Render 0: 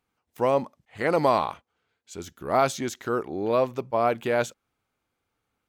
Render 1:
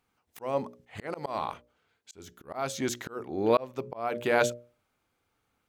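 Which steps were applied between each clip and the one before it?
mains-hum notches 60/120/180/240/300/360/420/480/540/600 Hz
volume swells 450 ms
level +3 dB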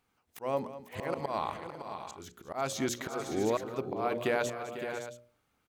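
downward compressor, threshold −26 dBFS, peak gain reduction 8.5 dB
on a send: multi-tap delay 207/498/563/670 ms −14/−12.5/−9.5/−15.5 dB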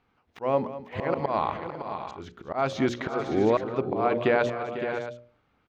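high-frequency loss of the air 240 metres
level +8 dB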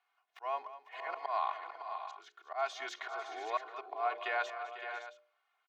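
high-pass filter 720 Hz 24 dB per octave
comb filter 2.8 ms, depth 86%
level −8.5 dB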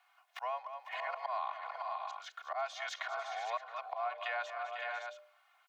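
Butterworth high-pass 510 Hz 96 dB per octave
downward compressor 3 to 1, threshold −49 dBFS, peak gain reduction 15 dB
level +10 dB

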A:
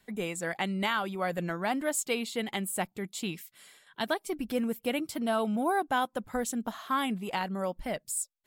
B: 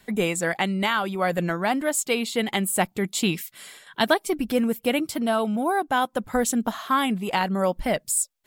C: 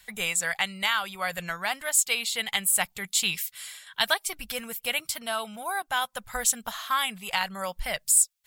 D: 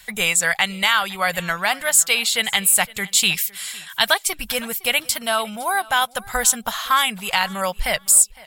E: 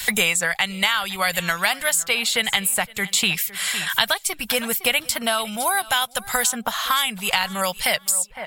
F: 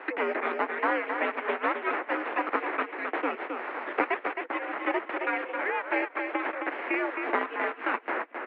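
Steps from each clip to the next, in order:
speech leveller 0.5 s; level +7.5 dB
guitar amp tone stack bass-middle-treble 10-0-10; level +4.5 dB
in parallel at −0.5 dB: brickwall limiter −16 dBFS, peak gain reduction 8 dB; on the sum: repeating echo 510 ms, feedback 23%, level −22 dB; level +3.5 dB
multiband upward and downward compressor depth 100%; level −2.5 dB
repeating echo 265 ms, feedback 15%, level −5.5 dB; full-wave rectification; single-sideband voice off tune +74 Hz 240–2,100 Hz

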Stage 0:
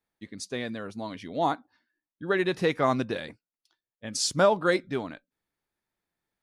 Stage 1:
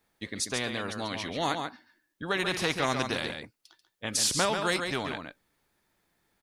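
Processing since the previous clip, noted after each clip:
on a send: single-tap delay 139 ms −10.5 dB
on the sum: every bin compressed towards the loudest bin 2 to 1
level −2 dB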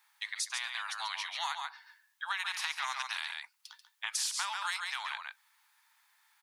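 elliptic high-pass filter 890 Hz, stop band 50 dB
downward compressor 3 to 1, threshold −43 dBFS, peak gain reduction 14.5 dB
level +7 dB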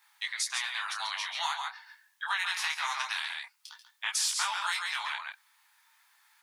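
micro pitch shift up and down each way 16 cents
level +7.5 dB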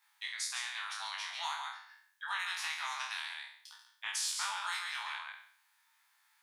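peak hold with a decay on every bin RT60 0.59 s
level −8 dB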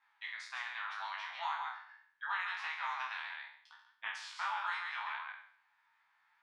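low-pass filter 2,000 Hz 12 dB per octave
flanger 0.76 Hz, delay 3.6 ms, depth 5 ms, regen +65%
level +6.5 dB

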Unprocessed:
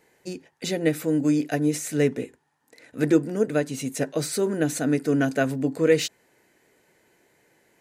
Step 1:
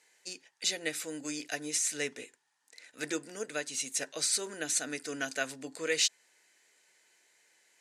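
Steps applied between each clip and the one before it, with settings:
meter weighting curve ITU-R 468
level −8.5 dB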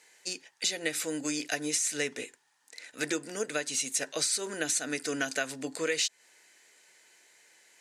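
downward compressor 5 to 1, threshold −33 dBFS, peak gain reduction 9.5 dB
level +6.5 dB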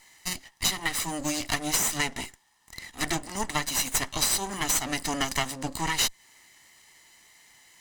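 lower of the sound and its delayed copy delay 0.99 ms
level +6 dB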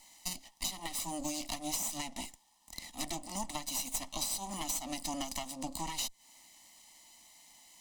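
downward compressor 4 to 1, threshold −33 dBFS, peak gain reduction 11 dB
phaser with its sweep stopped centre 420 Hz, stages 6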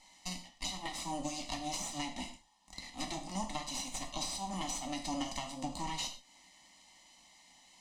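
high-frequency loss of the air 76 metres
reverb whose tail is shaped and stops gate 160 ms falling, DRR 3 dB

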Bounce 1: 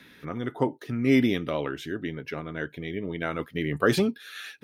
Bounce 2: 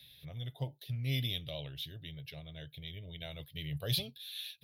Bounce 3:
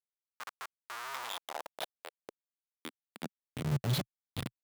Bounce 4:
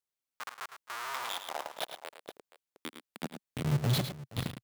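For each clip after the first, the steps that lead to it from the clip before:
drawn EQ curve 140 Hz 0 dB, 200 Hz −22 dB, 370 Hz −25 dB, 620 Hz −10 dB, 1,300 Hz −29 dB, 3,700 Hz +6 dB, 7,700 Hz −16 dB, 11,000 Hz +6 dB; level −2 dB
comparator with hysteresis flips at −35 dBFS; high-pass filter sweep 1,200 Hz → 120 Hz, 0:01.02–0:03.90; level +6.5 dB
multi-tap delay 79/108/472 ms −20/−9/−17 dB; level +2.5 dB

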